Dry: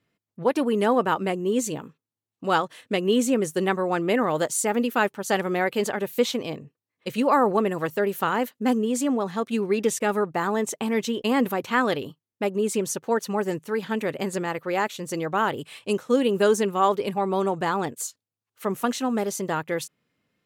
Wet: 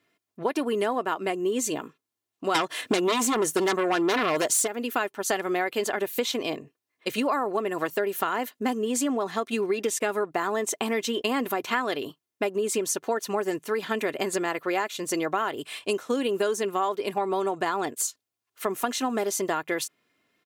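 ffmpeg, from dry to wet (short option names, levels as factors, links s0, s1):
-filter_complex "[0:a]asplit=3[s0][s1][s2];[s0]afade=t=out:st=2.54:d=0.02[s3];[s1]aeval=exprs='0.398*sin(PI/2*3.98*val(0)/0.398)':c=same,afade=t=in:st=2.54:d=0.02,afade=t=out:st=4.66:d=0.02[s4];[s2]afade=t=in:st=4.66:d=0.02[s5];[s3][s4][s5]amix=inputs=3:normalize=0,highpass=f=360:p=1,aecho=1:1:2.9:0.39,acompressor=threshold=0.0398:ratio=6,volume=1.78"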